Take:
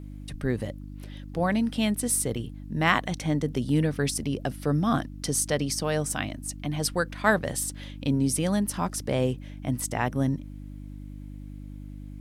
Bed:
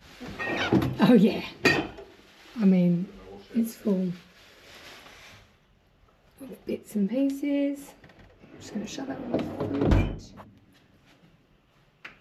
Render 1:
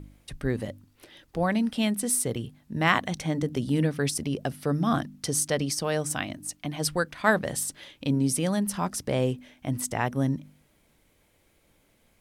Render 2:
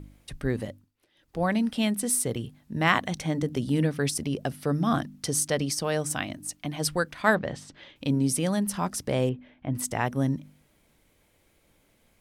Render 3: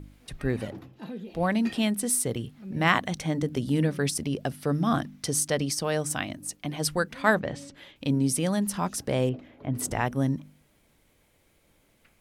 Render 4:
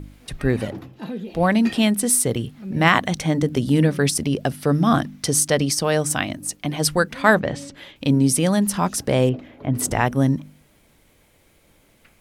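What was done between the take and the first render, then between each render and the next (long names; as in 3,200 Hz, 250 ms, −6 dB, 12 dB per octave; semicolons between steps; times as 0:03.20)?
hum removal 50 Hz, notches 6
0:00.62–0:01.45: duck −17.5 dB, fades 0.30 s; 0:07.35–0:07.96: high-frequency loss of the air 170 metres; 0:09.29–0:09.75: high-frequency loss of the air 380 metres
mix in bed −20.5 dB
level +7.5 dB; brickwall limiter −2 dBFS, peak gain reduction 3 dB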